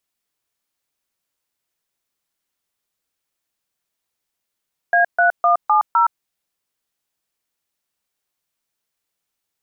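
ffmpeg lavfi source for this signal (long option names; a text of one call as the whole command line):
ffmpeg -f lavfi -i "aevalsrc='0.2*clip(min(mod(t,0.255),0.117-mod(t,0.255))/0.002,0,1)*(eq(floor(t/0.255),0)*(sin(2*PI*697*mod(t,0.255))+sin(2*PI*1633*mod(t,0.255)))+eq(floor(t/0.255),1)*(sin(2*PI*697*mod(t,0.255))+sin(2*PI*1477*mod(t,0.255)))+eq(floor(t/0.255),2)*(sin(2*PI*697*mod(t,0.255))+sin(2*PI*1209*mod(t,0.255)))+eq(floor(t/0.255),3)*(sin(2*PI*852*mod(t,0.255))+sin(2*PI*1209*mod(t,0.255)))+eq(floor(t/0.255),4)*(sin(2*PI*941*mod(t,0.255))+sin(2*PI*1336*mod(t,0.255))))':duration=1.275:sample_rate=44100" out.wav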